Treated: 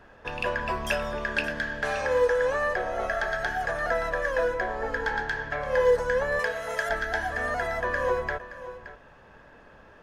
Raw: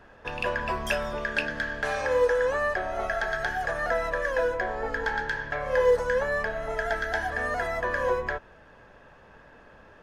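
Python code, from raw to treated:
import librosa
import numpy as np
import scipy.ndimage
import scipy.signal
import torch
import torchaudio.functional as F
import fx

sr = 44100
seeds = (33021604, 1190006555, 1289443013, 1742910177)

y = fx.tilt_eq(x, sr, slope=3.5, at=(6.39, 6.89))
y = y + 10.0 ** (-14.0 / 20.0) * np.pad(y, (int(572 * sr / 1000.0), 0))[:len(y)]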